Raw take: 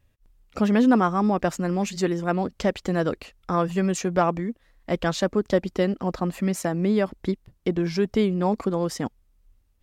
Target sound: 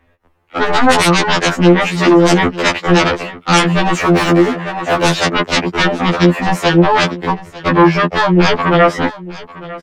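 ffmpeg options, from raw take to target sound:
-filter_complex "[0:a]acrossover=split=290 2400:gain=0.178 1 0.0891[s0][s1][s2];[s0][s1][s2]amix=inputs=3:normalize=0,acrossover=split=160|1300|2400[s3][s4][s5][s6];[s6]asoftclip=type=tanh:threshold=0.0119[s7];[s3][s4][s5][s7]amix=inputs=4:normalize=0,dynaudnorm=f=270:g=7:m=1.5,aeval=exprs='0.562*sin(PI/2*10*val(0)/0.562)':c=same,aecho=1:1:900:0.119,asettb=1/sr,asplit=3[s8][s9][s10];[s8]atrim=end=4.004[s11];[s9]atrim=start=4:end=5.05,asetpts=PTS-STARTPTS,afade=t=in:d=0.004:c=qsin,afade=t=out:st=1.046:d=0.004:c=qsin,asplit=2[s12][s13];[s13]highpass=f=720:p=1,volume=20,asoftclip=type=tanh:threshold=0.631[s14];[s12][s14]amix=inputs=2:normalize=0,lowpass=f=1300:p=1,volume=0.501[s15];[s10]atrim=start=5.046[s16];[s11][s15]acrossfade=d=0.004:c1=hsin:c2=qsin[s17];[s17][s16]acrossfade=d=0.004:c1=qsin:c2=hsin,asettb=1/sr,asplit=3[s18][s19][s20];[s18]atrim=end=7.904[s21];[s19]atrim=start=7.9:end=9.05,asetpts=PTS-STARTPTS,afade=t=in:d=0.004:c=qsin,afade=t=out:st=1.146:d=0.004:c=qsin,highshelf=f=8400:g=-7[s22];[s20]atrim=start=9.046[s23];[s21][s22]acrossfade=d=0.004:c1=hsin:c2=qsin[s24];[s24][s23]acrossfade=d=0.004:c1=qsin:c2=hsin,afftfilt=real='re*2*eq(mod(b,4),0)':imag='im*2*eq(mod(b,4),0)':win_size=2048:overlap=0.75,volume=0.891"

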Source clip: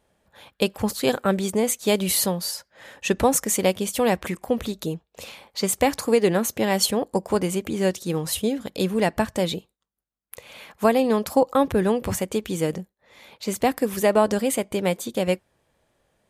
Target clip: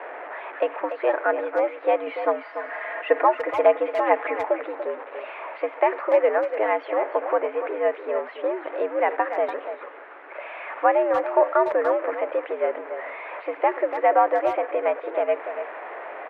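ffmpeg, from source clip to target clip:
-filter_complex "[0:a]aeval=exprs='val(0)+0.5*0.0447*sgn(val(0))':c=same,asettb=1/sr,asplit=3[s0][s1][s2];[s0]atrim=end=2.064[s3];[s1]atrim=start=2.06:end=4.45,asetpts=PTS-STARTPTS,afade=t=in:d=0.004:c=qsin,afade=t=out:st=2.386:d=0.004:c=qsin,aecho=1:1:5.2:0.77,atrim=end_sample=105399[s4];[s2]atrim=start=4.446[s5];[s3][s4]acrossfade=d=0.004:c1=hsin:c2=qsin[s6];[s6][s5]acrossfade=d=0.004:c1=qsin:c2=hsin,highpass=f=320:t=q:w=0.5412,highpass=f=320:t=q:w=1.307,lowpass=f=2100:t=q:w=0.5176,lowpass=f=2100:t=q:w=0.7071,lowpass=f=2100:t=q:w=1.932,afreqshift=94,asplit=2[s7][s8];[s8]adelay=290,highpass=300,lowpass=3400,asoftclip=type=hard:threshold=0.266,volume=0.355[s9];[s7][s9]amix=inputs=2:normalize=0"

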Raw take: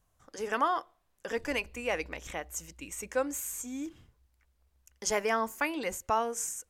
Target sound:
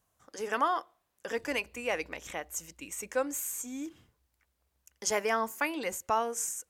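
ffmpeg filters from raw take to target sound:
-af "highpass=f=150:p=1,highshelf=f=11000:g=4"

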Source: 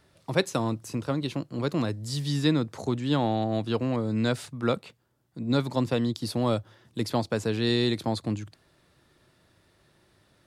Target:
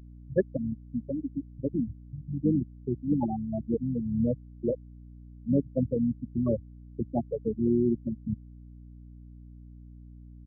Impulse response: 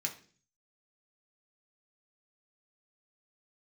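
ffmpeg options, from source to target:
-filter_complex "[0:a]asplit=2[s0][s1];[1:a]atrim=start_sample=2205,atrim=end_sample=6174[s2];[s1][s2]afir=irnorm=-1:irlink=0,volume=0.15[s3];[s0][s3]amix=inputs=2:normalize=0,asplit=3[s4][s5][s6];[s5]asetrate=29433,aresample=44100,atempo=1.49831,volume=0.398[s7];[s6]asetrate=88200,aresample=44100,atempo=0.5,volume=0.178[s8];[s4][s7][s8]amix=inputs=3:normalize=0,afftfilt=real='re*gte(hypot(re,im),0.316)':imag='im*gte(hypot(re,im),0.316)':win_size=1024:overlap=0.75,aeval=exprs='val(0)+0.00501*(sin(2*PI*60*n/s)+sin(2*PI*2*60*n/s)/2+sin(2*PI*3*60*n/s)/3+sin(2*PI*4*60*n/s)/4+sin(2*PI*5*60*n/s)/5)':c=same"

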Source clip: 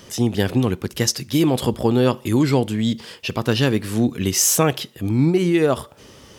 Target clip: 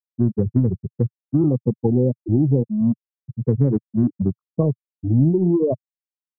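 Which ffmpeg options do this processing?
-filter_complex "[0:a]afftfilt=real='re*gte(hypot(re,im),0.562)':imag='im*gte(hypot(re,im),0.562)':win_size=1024:overlap=0.75,acrossover=split=110|1500|3600[s0][s1][s2][s3];[s0]acompressor=threshold=0.0126:ratio=4[s4];[s1]acompressor=threshold=0.126:ratio=4[s5];[s3]acompressor=threshold=0.0447:ratio=4[s6];[s4][s5][s2][s6]amix=inputs=4:normalize=0,adynamicequalizer=threshold=0.0126:dfrequency=120:dqfactor=1.1:tfrequency=120:tqfactor=1.1:attack=5:release=100:ratio=0.375:range=3.5:mode=boostabove:tftype=bell,asplit=2[s7][s8];[s8]asoftclip=type=tanh:threshold=0.075,volume=0.398[s9];[s7][s9]amix=inputs=2:normalize=0,afftfilt=real='re*lt(b*sr/1024,860*pow(2300/860,0.5+0.5*sin(2*PI*0.34*pts/sr)))':imag='im*lt(b*sr/1024,860*pow(2300/860,0.5+0.5*sin(2*PI*0.34*pts/sr)))':win_size=1024:overlap=0.75"

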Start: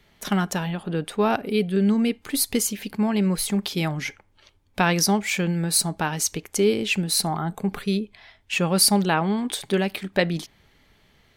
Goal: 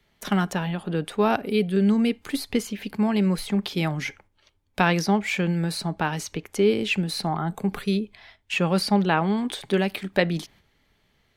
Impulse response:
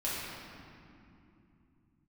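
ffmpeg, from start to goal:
-filter_complex "[0:a]agate=range=0.447:threshold=0.00282:ratio=16:detection=peak,acrossover=split=160|3900[s0][s1][s2];[s2]acompressor=threshold=0.01:ratio=6[s3];[s0][s1][s3]amix=inputs=3:normalize=0"

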